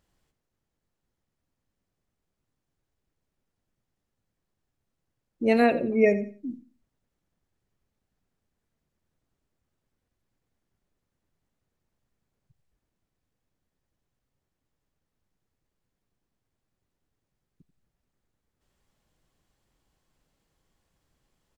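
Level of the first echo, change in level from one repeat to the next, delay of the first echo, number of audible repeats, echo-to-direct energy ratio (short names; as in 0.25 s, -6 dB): -15.0 dB, -12.5 dB, 88 ms, 2, -14.5 dB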